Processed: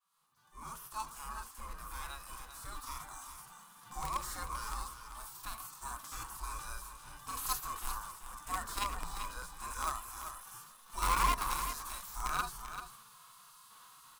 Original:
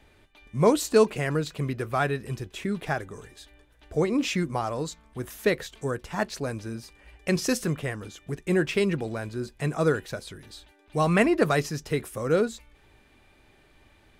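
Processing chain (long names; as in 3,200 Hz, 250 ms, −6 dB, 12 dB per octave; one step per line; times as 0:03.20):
fade in at the beginning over 3.23 s
gate on every frequency bin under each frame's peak −20 dB weak
power curve on the samples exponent 0.7
harmonic and percussive parts rebalanced percussive −17 dB
drawn EQ curve 130 Hz 0 dB, 200 Hz −13 dB, 590 Hz −26 dB, 1,100 Hz −4 dB, 2,000 Hz −25 dB, 12,000 Hz −8 dB
in parallel at −6.5 dB: bit reduction 7 bits
on the sum: parametric band 86 Hz −14 dB 1.8 octaves
on a send: single-tap delay 389 ms −9.5 dB
on the sum: level +15.5 dB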